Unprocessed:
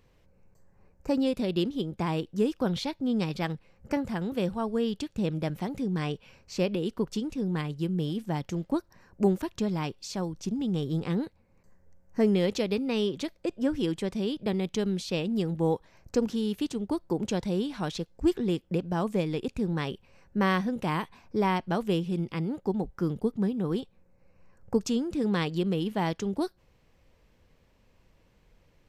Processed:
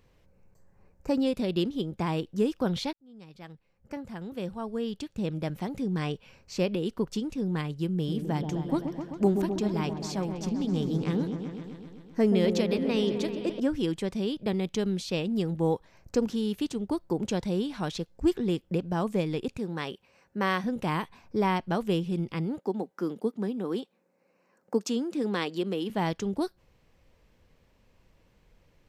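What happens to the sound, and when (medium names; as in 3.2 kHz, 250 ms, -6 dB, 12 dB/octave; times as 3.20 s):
2.93–5.89 s: fade in
7.95–13.60 s: delay with an opening low-pass 129 ms, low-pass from 750 Hz, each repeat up 1 oct, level -6 dB
19.57–20.64 s: high-pass 320 Hz 6 dB/octave
22.59–25.90 s: high-pass 220 Hz 24 dB/octave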